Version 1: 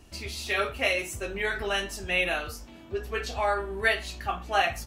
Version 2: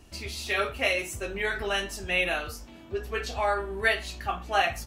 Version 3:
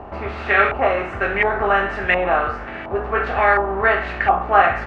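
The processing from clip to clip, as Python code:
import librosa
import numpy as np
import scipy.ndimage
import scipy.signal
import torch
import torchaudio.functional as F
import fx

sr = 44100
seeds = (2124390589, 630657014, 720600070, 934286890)

y1 = x
y2 = fx.bin_compress(y1, sr, power=0.6)
y2 = np.sign(y2) * np.maximum(np.abs(y2) - 10.0 ** (-53.0 / 20.0), 0.0)
y2 = fx.filter_lfo_lowpass(y2, sr, shape='saw_up', hz=1.4, low_hz=870.0, high_hz=2000.0, q=2.4)
y2 = y2 * librosa.db_to_amplitude(6.0)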